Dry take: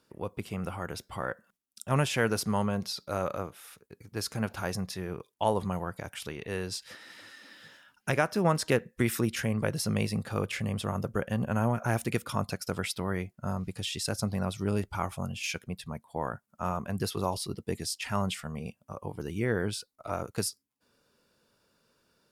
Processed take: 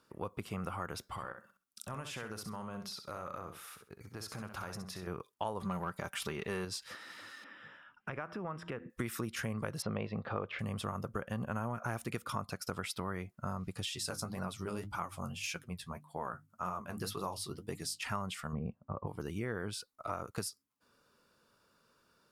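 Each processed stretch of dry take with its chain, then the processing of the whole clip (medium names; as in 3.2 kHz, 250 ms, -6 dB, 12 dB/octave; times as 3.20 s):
1.03–5.07 s: compression, threshold -39 dBFS + feedback delay 65 ms, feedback 19%, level -8 dB
5.60–6.65 s: comb 5.1 ms, depth 39% + waveshaping leveller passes 1
7.44–8.90 s: de-hum 84.75 Hz, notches 4 + compression 4:1, threshold -36 dBFS + Savitzky-Golay filter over 25 samples
9.82–10.59 s: low-pass 3.6 kHz 24 dB/octave + peaking EQ 590 Hz +7 dB 1.5 oct
13.90–18.03 s: peaking EQ 13 kHz +4 dB 2.3 oct + hum notches 50/100/150/200/250/300 Hz + flange 1.8 Hz, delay 5.4 ms, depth 8.9 ms, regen +40%
18.53–19.07 s: low-pass 1.3 kHz + bass shelf 410 Hz +8 dB
whole clip: peaking EQ 1.2 kHz +7.5 dB 0.62 oct; compression 4:1, threshold -33 dBFS; trim -2 dB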